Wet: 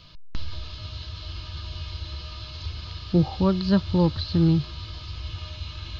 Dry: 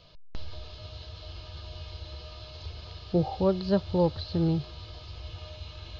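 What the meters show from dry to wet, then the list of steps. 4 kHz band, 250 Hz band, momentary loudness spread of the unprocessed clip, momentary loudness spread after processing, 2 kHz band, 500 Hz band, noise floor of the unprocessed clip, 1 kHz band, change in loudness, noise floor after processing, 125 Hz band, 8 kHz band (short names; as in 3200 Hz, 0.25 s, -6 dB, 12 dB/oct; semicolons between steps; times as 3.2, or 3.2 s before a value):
+7.0 dB, +6.5 dB, 17 LU, 16 LU, +7.0 dB, -1.0 dB, -46 dBFS, +2.0 dB, +2.5 dB, -40 dBFS, +7.0 dB, n/a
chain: band shelf 570 Hz -10 dB 1.3 oct; gain +7 dB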